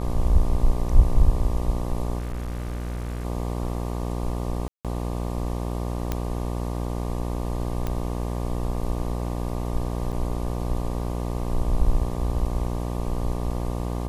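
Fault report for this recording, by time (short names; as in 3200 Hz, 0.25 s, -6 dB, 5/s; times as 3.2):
buzz 60 Hz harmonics 20 -28 dBFS
2.18–3.25 clipped -26.5 dBFS
4.68–4.85 gap 0.167 s
6.12 pop -12 dBFS
7.87 pop -15 dBFS
10.12–10.13 gap 7.5 ms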